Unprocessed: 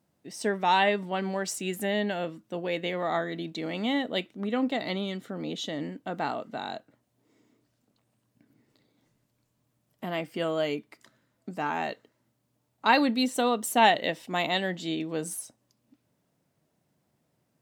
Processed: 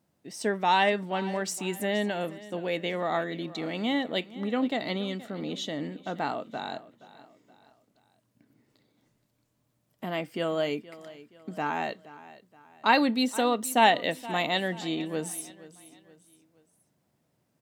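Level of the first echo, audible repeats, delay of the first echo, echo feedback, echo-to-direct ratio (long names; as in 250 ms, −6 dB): −18.0 dB, 3, 473 ms, 42%, −17.0 dB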